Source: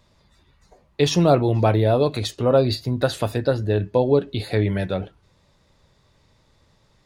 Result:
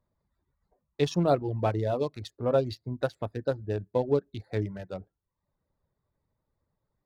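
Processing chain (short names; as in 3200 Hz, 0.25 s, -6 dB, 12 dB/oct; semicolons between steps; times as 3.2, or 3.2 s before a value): Wiener smoothing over 15 samples; reverb removal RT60 0.62 s; upward expander 1.5:1, over -36 dBFS; gain -6 dB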